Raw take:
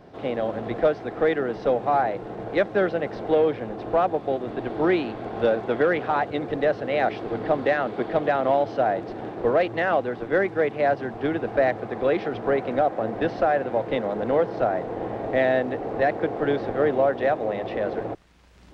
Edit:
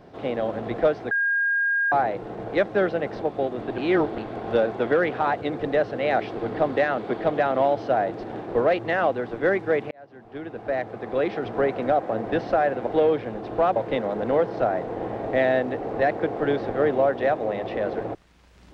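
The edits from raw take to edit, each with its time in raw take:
1.11–1.92 s: bleep 1.62 kHz -19.5 dBFS
3.22–4.11 s: move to 13.76 s
4.67–5.07 s: reverse
10.80–12.40 s: fade in

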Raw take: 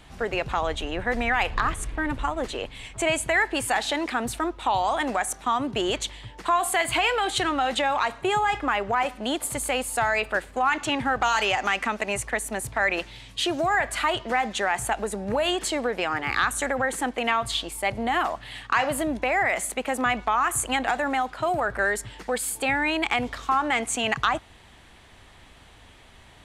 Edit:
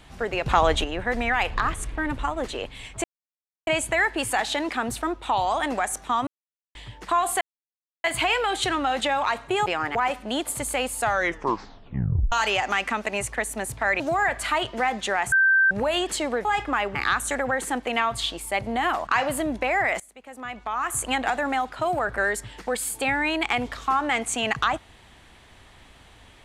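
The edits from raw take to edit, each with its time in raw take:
0.46–0.84 s: gain +7 dB
3.04 s: insert silence 0.63 s
5.64–6.12 s: mute
6.78 s: insert silence 0.63 s
8.40–8.90 s: swap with 15.97–16.26 s
9.97 s: tape stop 1.30 s
12.95–13.52 s: delete
14.84–15.23 s: bleep 1.56 kHz -15 dBFS
18.38–18.68 s: delete
19.61–20.67 s: fade in quadratic, from -20.5 dB

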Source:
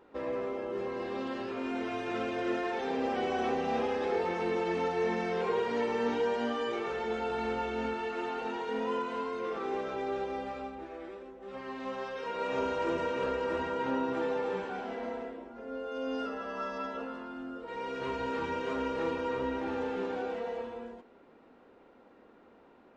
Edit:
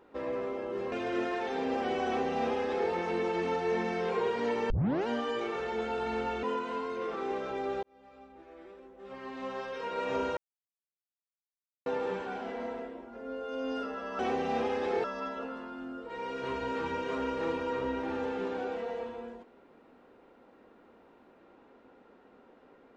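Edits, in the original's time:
0.92–2.24 s: delete
3.38–4.23 s: copy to 16.62 s
6.02 s: tape start 0.37 s
7.75–8.86 s: delete
10.26–12.00 s: fade in linear
12.80–14.29 s: mute

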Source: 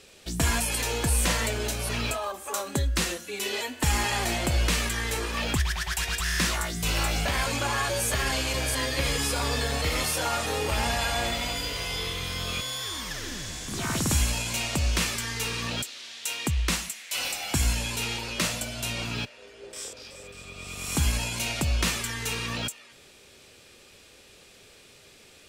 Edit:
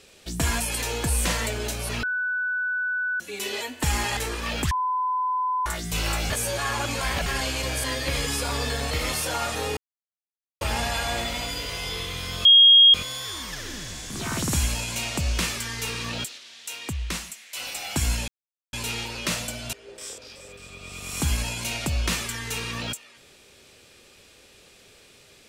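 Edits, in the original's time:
2.03–3.20 s: bleep 1.49 kHz -23.5 dBFS
4.17–5.08 s: delete
5.62–6.57 s: bleep 1.01 kHz -22 dBFS
7.21–8.17 s: reverse
10.68 s: insert silence 0.84 s
12.52 s: add tone 3.26 kHz -9.5 dBFS 0.49 s
15.96–17.33 s: gain -4 dB
17.86 s: insert silence 0.45 s
18.86–19.48 s: delete

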